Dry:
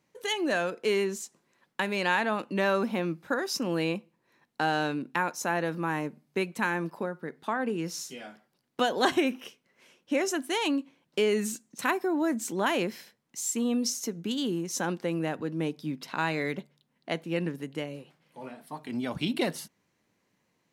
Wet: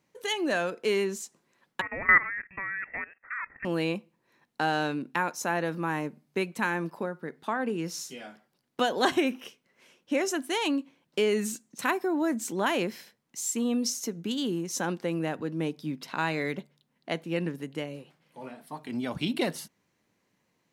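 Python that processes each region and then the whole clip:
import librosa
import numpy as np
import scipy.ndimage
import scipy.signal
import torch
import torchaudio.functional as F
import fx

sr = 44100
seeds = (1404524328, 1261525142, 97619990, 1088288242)

y = fx.chain(x, sr, fx.highpass_res(hz=1000.0, q=7.0),
    fx.level_steps(step_db=17),
    fx.freq_invert(carrier_hz=2900), at=(1.81, 3.65))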